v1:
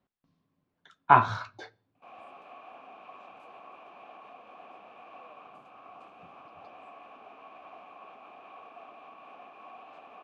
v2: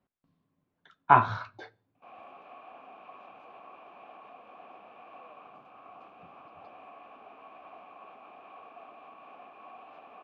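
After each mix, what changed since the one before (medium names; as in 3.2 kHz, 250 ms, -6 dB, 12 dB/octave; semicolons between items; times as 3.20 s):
master: add distance through air 140 m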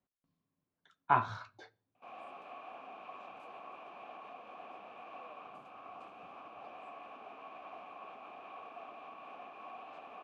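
speech -9.5 dB; master: remove distance through air 140 m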